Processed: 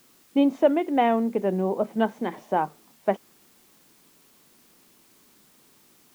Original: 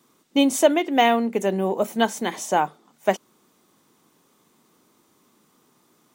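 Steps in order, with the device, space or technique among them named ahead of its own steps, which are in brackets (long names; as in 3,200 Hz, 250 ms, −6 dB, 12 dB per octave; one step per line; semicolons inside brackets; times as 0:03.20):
cassette deck with a dirty head (head-to-tape spacing loss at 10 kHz 45 dB; tape wow and flutter; white noise bed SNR 32 dB)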